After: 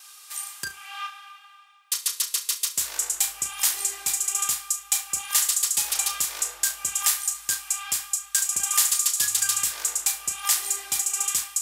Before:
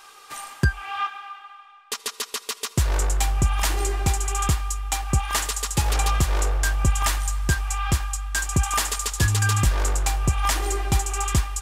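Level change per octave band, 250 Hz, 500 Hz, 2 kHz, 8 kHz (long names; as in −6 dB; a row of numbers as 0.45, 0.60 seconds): below −20 dB, below −15 dB, −6.0 dB, +6.5 dB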